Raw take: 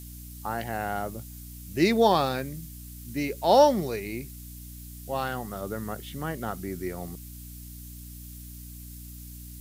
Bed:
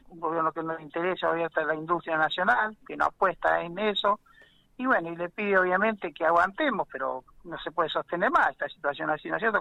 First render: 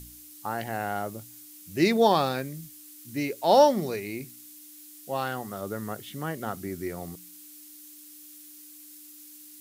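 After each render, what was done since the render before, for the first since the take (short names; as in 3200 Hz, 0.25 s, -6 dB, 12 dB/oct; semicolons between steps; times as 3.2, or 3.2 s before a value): de-hum 60 Hz, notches 4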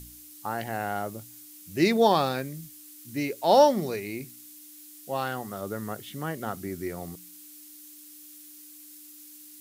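nothing audible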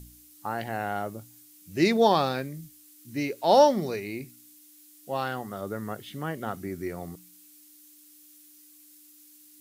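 noise print and reduce 6 dB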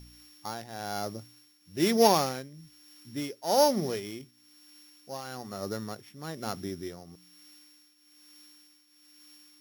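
sample sorter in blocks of 8 samples; tremolo triangle 1.1 Hz, depth 75%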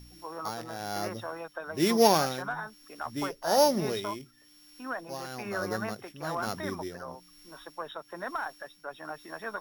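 add bed -12 dB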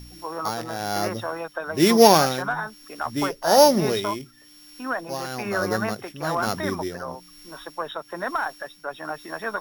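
gain +8 dB; limiter -2 dBFS, peak gain reduction 1 dB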